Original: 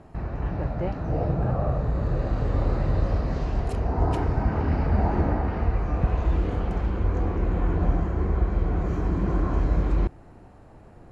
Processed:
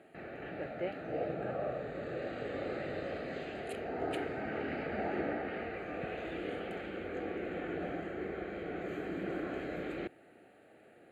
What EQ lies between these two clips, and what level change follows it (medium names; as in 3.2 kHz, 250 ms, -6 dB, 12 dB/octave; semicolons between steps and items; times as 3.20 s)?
high-pass 470 Hz 12 dB/octave; static phaser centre 2.4 kHz, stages 4; +1.0 dB